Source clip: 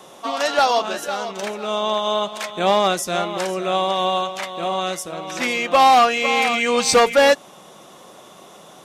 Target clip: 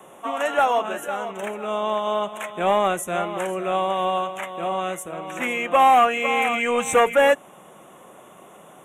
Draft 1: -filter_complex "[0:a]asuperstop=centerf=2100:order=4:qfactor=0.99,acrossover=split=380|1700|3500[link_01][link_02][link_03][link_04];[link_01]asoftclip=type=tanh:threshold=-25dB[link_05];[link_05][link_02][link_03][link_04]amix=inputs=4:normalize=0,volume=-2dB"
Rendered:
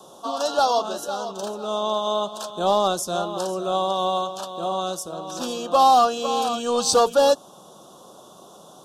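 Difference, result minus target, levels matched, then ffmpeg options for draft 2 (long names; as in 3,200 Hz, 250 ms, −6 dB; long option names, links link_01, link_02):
2,000 Hz band −12.5 dB
-filter_complex "[0:a]asuperstop=centerf=4700:order=4:qfactor=0.99,acrossover=split=380|1700|3500[link_01][link_02][link_03][link_04];[link_01]asoftclip=type=tanh:threshold=-25dB[link_05];[link_05][link_02][link_03][link_04]amix=inputs=4:normalize=0,volume=-2dB"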